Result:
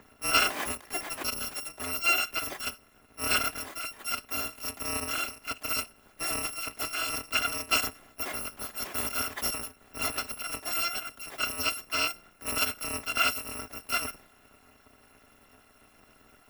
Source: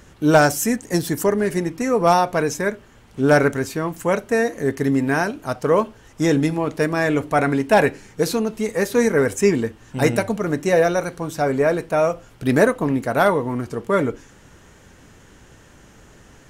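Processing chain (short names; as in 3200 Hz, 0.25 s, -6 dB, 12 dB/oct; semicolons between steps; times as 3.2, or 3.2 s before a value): FFT order left unsorted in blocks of 256 samples; three-band isolator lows -16 dB, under 180 Hz, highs -18 dB, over 2400 Hz; gain +1 dB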